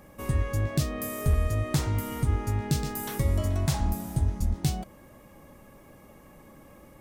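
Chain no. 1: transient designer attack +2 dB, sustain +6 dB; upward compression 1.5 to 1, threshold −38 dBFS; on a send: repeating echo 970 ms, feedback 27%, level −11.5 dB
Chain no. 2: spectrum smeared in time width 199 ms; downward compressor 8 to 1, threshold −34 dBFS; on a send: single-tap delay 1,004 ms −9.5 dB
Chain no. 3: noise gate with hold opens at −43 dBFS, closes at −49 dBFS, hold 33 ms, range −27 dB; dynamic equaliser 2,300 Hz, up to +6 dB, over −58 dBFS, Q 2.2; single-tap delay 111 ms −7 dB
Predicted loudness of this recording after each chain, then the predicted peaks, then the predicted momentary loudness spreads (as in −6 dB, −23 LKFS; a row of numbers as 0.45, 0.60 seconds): −27.5, −39.0, −28.0 LKFS; −12.5, −26.0, −13.5 dBFS; 20, 15, 4 LU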